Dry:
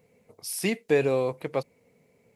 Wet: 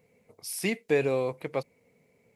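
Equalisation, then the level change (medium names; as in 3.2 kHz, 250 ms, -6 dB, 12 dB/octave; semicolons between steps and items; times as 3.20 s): peaking EQ 2.2 kHz +3.5 dB 0.33 oct; -2.5 dB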